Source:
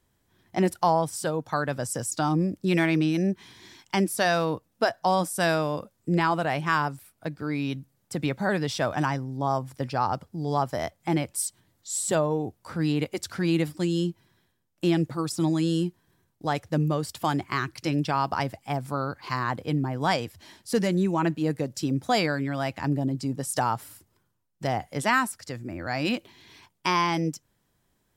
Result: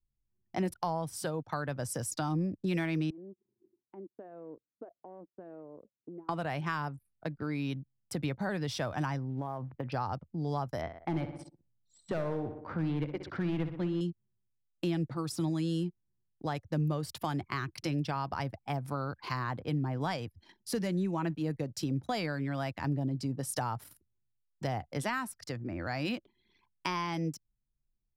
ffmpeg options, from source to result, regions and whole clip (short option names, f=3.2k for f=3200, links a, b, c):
-filter_complex "[0:a]asettb=1/sr,asplit=3[a][b][c];[a]atrim=end=3.104[d];[b]atrim=start=3.1:end=6.29,asetpts=PTS-STARTPTS,afade=t=in:d=0.004:c=qsin,afade=t=out:st=3.186:d=0.004:c=qsin,acompressor=threshold=-37dB:ratio=5:attack=3.2:release=140:knee=1:detection=peak,bandpass=f=380:t=q:w=2[e];[c]atrim=start=6.286[f];[d][e]acrossfade=d=0.004:c1=hsin:c2=qsin[g];[g][f]acrossfade=d=0.004:c1=qsin:c2=hsin,asettb=1/sr,asplit=3[h][i][j];[h]atrim=end=9.294[k];[i]atrim=start=9.29:end=9.92,asetpts=PTS-STARTPTS,afade=t=in:d=0.004:c=qsin,afade=t=out:st=0.626:d=0.004:c=qsin,acompressor=threshold=-27dB:ratio=12:attack=3.2:release=140:knee=1:detection=peak,lowpass=f=3.1k:w=0.5412,lowpass=f=3.1k:w=1.3066,acrusher=bits=9:mode=log:mix=0:aa=0.000001[l];[j]atrim=start=9.916[m];[k][l]acrossfade=d=0.004:c1=hsin:c2=qsin[n];[n][m]acrossfade=d=0.004:c1=qsin:c2=hsin,asettb=1/sr,asplit=3[o][p][q];[o]atrim=end=10.814[r];[p]atrim=start=10.81:end=14.01,asetpts=PTS-STARTPTS,afade=t=in:d=0.004:c=qsin,afade=t=out:st=3.196:d=0.004:c=qsin,lowpass=2.4k,asoftclip=type=hard:threshold=-20dB,aecho=1:1:62|124|186|248|310|372|434:0.282|0.166|0.0981|0.0579|0.0342|0.0201|0.0119,atrim=end_sample=141120[s];[q]atrim=start=14.006[t];[r][s]acrossfade=d=0.004:c1=hsin:c2=qsin[u];[u][t]acrossfade=d=0.004:c1=qsin:c2=hsin,anlmdn=0.0398,equalizer=f=7.6k:w=3.8:g=-5.5,acrossover=split=130[v][w];[w]acompressor=threshold=-34dB:ratio=2.5[x];[v][x]amix=inputs=2:normalize=0,volume=-1dB"